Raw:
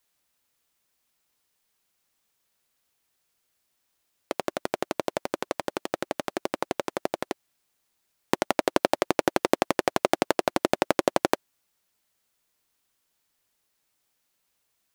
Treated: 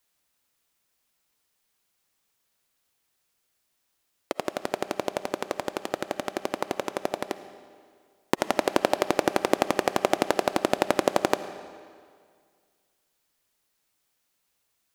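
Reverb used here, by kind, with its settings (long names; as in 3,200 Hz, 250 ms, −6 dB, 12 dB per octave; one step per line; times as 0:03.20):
comb and all-pass reverb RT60 2 s, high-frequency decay 0.9×, pre-delay 30 ms, DRR 12 dB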